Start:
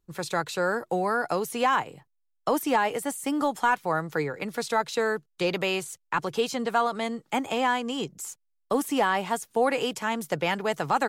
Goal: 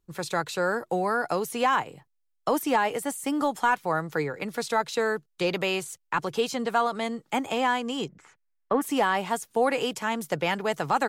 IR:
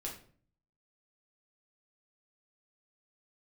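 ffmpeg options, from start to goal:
-filter_complex "[0:a]asplit=3[link_01][link_02][link_03];[link_01]afade=type=out:start_time=8.08:duration=0.02[link_04];[link_02]lowpass=frequency=1900:width_type=q:width=2.2,afade=type=in:start_time=8.08:duration=0.02,afade=type=out:start_time=8.81:duration=0.02[link_05];[link_03]afade=type=in:start_time=8.81:duration=0.02[link_06];[link_04][link_05][link_06]amix=inputs=3:normalize=0"

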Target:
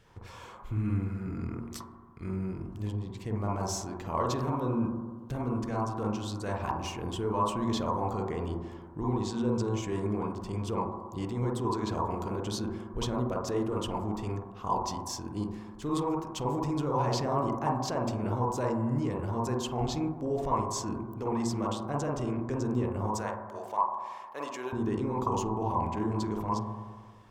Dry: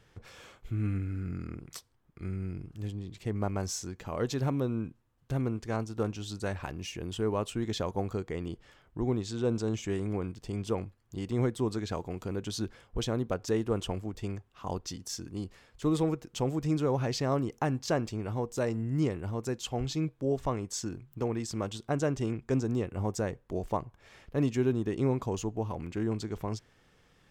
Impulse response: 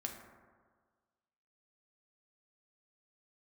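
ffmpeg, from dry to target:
-filter_complex "[0:a]asettb=1/sr,asplit=3[link_01][link_02][link_03];[link_01]atrim=end=23.104[link_04];[link_02]atrim=start=23.1:end=24.73,asetpts=PTS-STARTPTS,afade=type=in:duration=0.004:curve=qsin,afade=type=out:start_time=1.626:duration=0.004:curve=qsin,highpass=790[link_05];[link_03]atrim=start=24.726[link_06];[link_04][link_05]acrossfade=duration=0.004:curve1=hsin:curve2=qsin[link_07];[link_07][link_06]acrossfade=duration=0.004:curve1=qsin:curve2=hsin,alimiter=level_in=1.5dB:limit=-24dB:level=0:latency=1:release=10,volume=-1.5dB,asplit=2[link_08][link_09];[link_09]lowpass=frequency=1000:width_type=q:width=7.7[link_10];[1:a]atrim=start_sample=2205,highshelf=frequency=4600:gain=11.5,adelay=48[link_11];[link_10][link_11]afir=irnorm=-1:irlink=0,volume=0dB[link_12];[link_08][link_12]amix=inputs=2:normalize=0"

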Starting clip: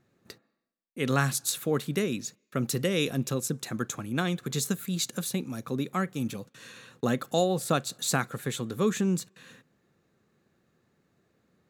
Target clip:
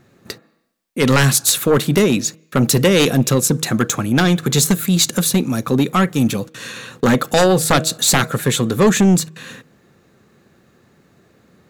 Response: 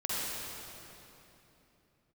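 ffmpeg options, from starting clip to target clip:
-af "bandreject=frequency=159.2:width_type=h:width=4,bandreject=frequency=318.4:width_type=h:width=4,bandreject=frequency=477.6:width_type=h:width=4,bandreject=frequency=636.8:width_type=h:width=4,aeval=exprs='0.355*sin(PI/2*3.55*val(0)/0.355)':channel_layout=same,volume=1.5dB"

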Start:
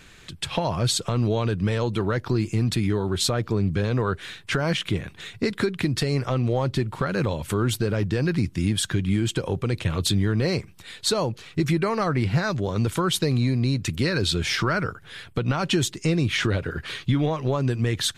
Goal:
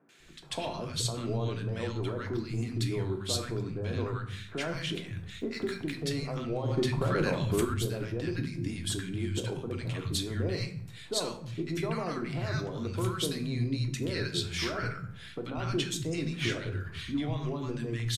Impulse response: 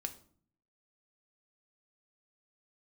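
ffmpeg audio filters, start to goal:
-filter_complex "[0:a]bandreject=frequency=64.81:width_type=h:width=4,bandreject=frequency=129.62:width_type=h:width=4,bandreject=frequency=194.43:width_type=h:width=4,bandreject=frequency=259.24:width_type=h:width=4,bandreject=frequency=324.05:width_type=h:width=4,bandreject=frequency=388.86:width_type=h:width=4,bandreject=frequency=453.67:width_type=h:width=4,bandreject=frequency=518.48:width_type=h:width=4,bandreject=frequency=583.29:width_type=h:width=4,bandreject=frequency=648.1:width_type=h:width=4,bandreject=frequency=712.91:width_type=h:width=4,bandreject=frequency=777.72:width_type=h:width=4,bandreject=frequency=842.53:width_type=h:width=4,bandreject=frequency=907.34:width_type=h:width=4,bandreject=frequency=972.15:width_type=h:width=4,bandreject=frequency=1036.96:width_type=h:width=4,bandreject=frequency=1101.77:width_type=h:width=4,bandreject=frequency=1166.58:width_type=h:width=4,bandreject=frequency=1231.39:width_type=h:width=4,bandreject=frequency=1296.2:width_type=h:width=4,bandreject=frequency=1361.01:width_type=h:width=4,bandreject=frequency=1425.82:width_type=h:width=4,bandreject=frequency=1490.63:width_type=h:width=4,bandreject=frequency=1555.44:width_type=h:width=4,bandreject=frequency=1620.25:width_type=h:width=4,bandreject=frequency=1685.06:width_type=h:width=4,bandreject=frequency=1749.87:width_type=h:width=4,bandreject=frequency=1814.68:width_type=h:width=4,bandreject=frequency=1879.49:width_type=h:width=4,bandreject=frequency=1944.3:width_type=h:width=4,bandreject=frequency=2009.11:width_type=h:width=4,bandreject=frequency=2073.92:width_type=h:width=4,bandreject=frequency=2138.73:width_type=h:width=4,bandreject=frequency=2203.54:width_type=h:width=4,bandreject=frequency=2268.35:width_type=h:width=4,bandreject=frequency=2333.16:width_type=h:width=4,bandreject=frequency=2397.97:width_type=h:width=4,bandreject=frequency=2462.78:width_type=h:width=4,bandreject=frequency=2527.59:width_type=h:width=4[link_01];[1:a]atrim=start_sample=2205,asetrate=39249,aresample=44100[link_02];[link_01][link_02]afir=irnorm=-1:irlink=0,asettb=1/sr,asplit=3[link_03][link_04][link_05];[link_03]atrim=end=5.314[link_06];[link_04]atrim=start=5.31:end=5.97,asetpts=PTS-STARTPTS,afade=type=in:duration=0.004:curve=qsin,afade=type=out:start_time=0.656:duration=0.004:curve=qsin,aeval=exprs='sgn(val(0))*max(abs(val(0))-0.00316,0)':channel_layout=same[link_07];[link_05]atrim=start=5.966[link_08];[link_06][link_07]acrossfade=duration=0.004:curve1=hsin:curve2=qsin[link_09];[link_09][link_08]acrossfade=duration=0.004:curve1=qsin:curve2=hsin,asettb=1/sr,asplit=3[link_10][link_11][link_12];[link_10]atrim=end=6.684[link_13];[link_11]atrim=start=6.68:end=7.65,asetpts=PTS-STARTPTS,afade=type=in:duration=0.004:curve=qsin,afade=type=out:start_time=0.966:duration=0.004:curve=qsin,acontrast=82[link_14];[link_12]atrim=start=7.646[link_15];[link_13][link_14]acrossfade=duration=0.004:curve1=hsin:curve2=qsin[link_16];[link_16][link_15]acrossfade=duration=0.004:curve1=qsin:curve2=hsin,asettb=1/sr,asplit=3[link_17][link_18][link_19];[link_17]atrim=end=16.854[link_20];[link_18]atrim=start=16.85:end=17.65,asetpts=PTS-STARTPTS,afade=type=in:duration=0.004:curve=qsin,afade=type=out:start_time=0.796:duration=0.004:curve=qsin,equalizer=frequency=530:width=2.4:gain=-6[link_21];[link_19]atrim=start=17.646[link_22];[link_20][link_21]acrossfade=duration=0.004:curve1=hsin:curve2=qsin[link_23];[link_23][link_22]acrossfade=duration=0.004:curve1=qsin:curve2=hsin,acrossover=split=170|1100[link_24][link_25][link_26];[link_26]adelay=90[link_27];[link_24]adelay=200[link_28];[link_28][link_25][link_27]amix=inputs=3:normalize=0,volume=-7dB"

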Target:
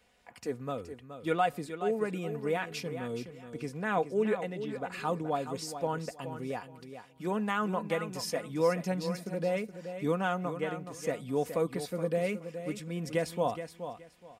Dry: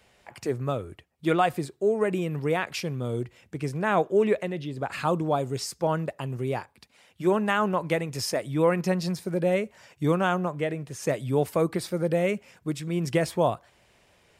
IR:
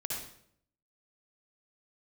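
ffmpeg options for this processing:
-filter_complex "[0:a]aecho=1:1:4.1:0.5,asplit=2[link_01][link_02];[link_02]aecho=0:1:422|844|1266:0.316|0.0727|0.0167[link_03];[link_01][link_03]amix=inputs=2:normalize=0,volume=-7.5dB"

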